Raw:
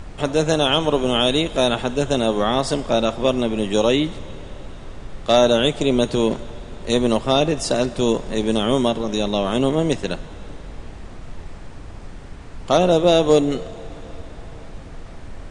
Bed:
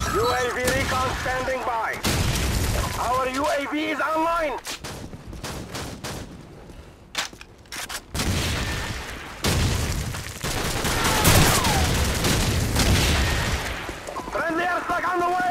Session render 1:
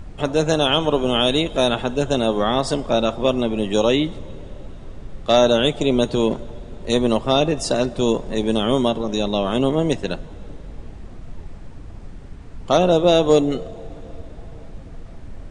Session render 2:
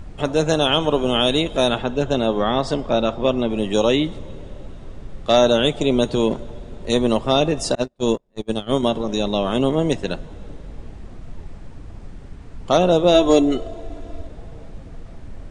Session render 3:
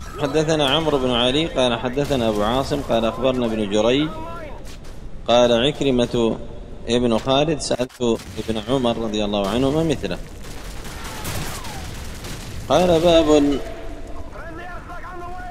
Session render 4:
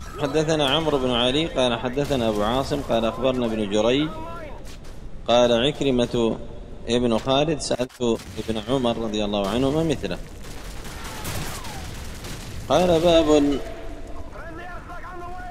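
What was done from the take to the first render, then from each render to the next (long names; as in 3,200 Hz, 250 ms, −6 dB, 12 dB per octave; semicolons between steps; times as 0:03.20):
broadband denoise 7 dB, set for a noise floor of −37 dBFS
0:01.78–0:03.50: high-frequency loss of the air 81 metres; 0:07.75–0:08.83: noise gate −19 dBFS, range −38 dB; 0:13.14–0:14.27: comb filter 3 ms, depth 68%
mix in bed −11.5 dB
level −2.5 dB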